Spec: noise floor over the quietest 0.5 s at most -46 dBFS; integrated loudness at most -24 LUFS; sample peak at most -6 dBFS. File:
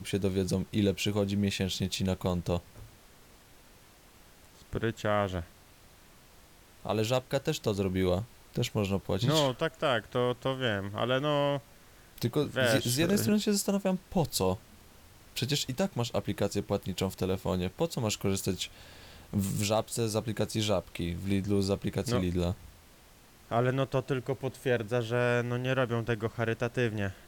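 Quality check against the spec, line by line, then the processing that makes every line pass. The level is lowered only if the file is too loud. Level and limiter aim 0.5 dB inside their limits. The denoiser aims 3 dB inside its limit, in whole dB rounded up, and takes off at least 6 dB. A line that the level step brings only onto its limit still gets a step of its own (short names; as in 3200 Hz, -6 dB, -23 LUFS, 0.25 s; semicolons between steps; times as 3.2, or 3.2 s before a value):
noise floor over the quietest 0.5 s -57 dBFS: OK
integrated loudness -30.5 LUFS: OK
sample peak -12.5 dBFS: OK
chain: none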